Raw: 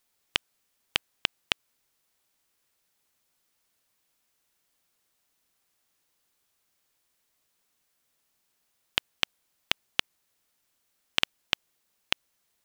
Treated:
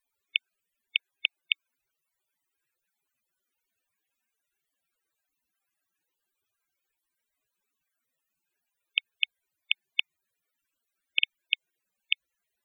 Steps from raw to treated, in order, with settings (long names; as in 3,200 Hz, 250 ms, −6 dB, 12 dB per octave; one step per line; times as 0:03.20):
spectral peaks only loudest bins 64
thirty-one-band graphic EQ 400 Hz +4 dB, 1,600 Hz +8 dB, 2,500 Hz +7 dB, 5,000 Hz −7 dB, 16,000 Hz +3 dB
level −1.5 dB